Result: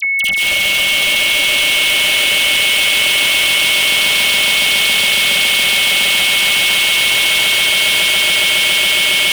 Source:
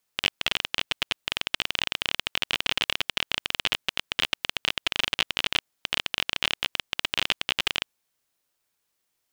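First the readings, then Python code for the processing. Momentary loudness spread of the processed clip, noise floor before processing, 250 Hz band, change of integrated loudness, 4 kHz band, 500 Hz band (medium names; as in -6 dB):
1 LU, -78 dBFS, +12.0 dB, +17.0 dB, +16.5 dB, +15.0 dB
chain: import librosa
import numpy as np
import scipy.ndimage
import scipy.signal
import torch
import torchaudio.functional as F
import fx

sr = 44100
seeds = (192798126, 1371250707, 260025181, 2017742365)

y = fx.high_shelf(x, sr, hz=4600.0, db=10.5)
y = 10.0 ** (-12.0 / 20.0) * np.tanh(y / 10.0 ** (-12.0 / 20.0))
y = scipy.signal.sosfilt(scipy.signal.cheby1(2, 1.0, 190.0, 'highpass', fs=sr, output='sos'), y)
y = fx.peak_eq(y, sr, hz=590.0, db=9.0, octaves=0.46)
y = y + 0.55 * np.pad(y, (int(5.1 * sr / 1000.0), 0))[:len(y)]
y = fx.echo_swell(y, sr, ms=139, loudest=8, wet_db=-3.5)
y = fx.rev_plate(y, sr, seeds[0], rt60_s=3.6, hf_ratio=0.95, predelay_ms=115, drr_db=3.0)
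y = fx.fuzz(y, sr, gain_db=38.0, gate_db=-38.0)
y = y + 10.0 ** (-16.0 / 20.0) * np.sin(2.0 * np.pi * 2200.0 * np.arange(len(y)) / sr)
y = fx.dispersion(y, sr, late='lows', ms=52.0, hz=2000.0)
y = fx.env_flatten(y, sr, amount_pct=50)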